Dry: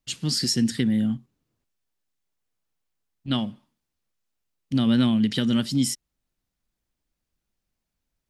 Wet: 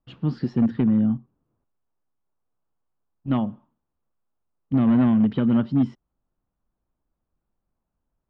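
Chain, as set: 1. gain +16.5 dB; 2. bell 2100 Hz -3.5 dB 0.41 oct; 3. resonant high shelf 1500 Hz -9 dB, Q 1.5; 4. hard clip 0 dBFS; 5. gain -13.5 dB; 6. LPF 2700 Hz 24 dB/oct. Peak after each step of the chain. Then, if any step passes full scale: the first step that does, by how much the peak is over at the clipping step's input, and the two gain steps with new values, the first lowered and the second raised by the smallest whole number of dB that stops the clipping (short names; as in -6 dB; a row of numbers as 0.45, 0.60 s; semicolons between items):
+6.5, +6.5, +5.0, 0.0, -13.5, -13.0 dBFS; step 1, 5.0 dB; step 1 +11.5 dB, step 5 -8.5 dB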